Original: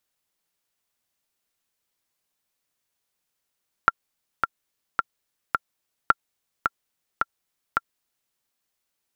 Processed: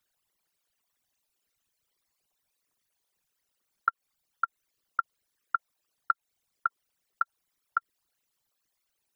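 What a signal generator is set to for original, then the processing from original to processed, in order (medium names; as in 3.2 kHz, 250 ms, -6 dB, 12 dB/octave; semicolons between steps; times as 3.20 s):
metronome 108 bpm, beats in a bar 4, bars 2, 1.37 kHz, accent 5.5 dB -2 dBFS
resonances exaggerated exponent 3; compression, threshold -22 dBFS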